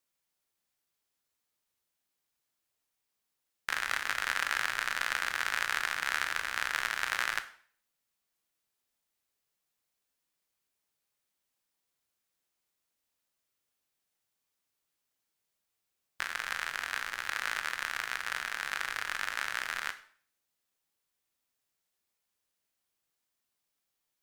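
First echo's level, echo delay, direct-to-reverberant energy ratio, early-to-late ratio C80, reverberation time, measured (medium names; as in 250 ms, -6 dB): no echo, no echo, 9.5 dB, 17.5 dB, 0.50 s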